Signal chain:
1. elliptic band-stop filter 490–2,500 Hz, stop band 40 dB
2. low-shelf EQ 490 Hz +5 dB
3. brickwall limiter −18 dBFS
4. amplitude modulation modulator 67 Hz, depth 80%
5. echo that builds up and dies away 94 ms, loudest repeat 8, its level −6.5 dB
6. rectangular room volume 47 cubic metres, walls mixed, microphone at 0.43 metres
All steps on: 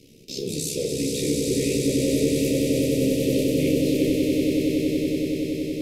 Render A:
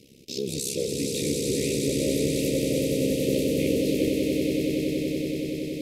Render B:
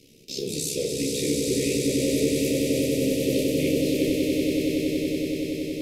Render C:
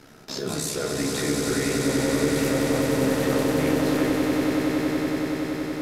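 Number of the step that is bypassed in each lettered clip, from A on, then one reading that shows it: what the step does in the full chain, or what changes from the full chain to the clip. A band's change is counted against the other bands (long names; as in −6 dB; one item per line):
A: 6, echo-to-direct ratio 7.5 dB to 5.0 dB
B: 2, 125 Hz band −4.0 dB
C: 1, 2 kHz band +8.0 dB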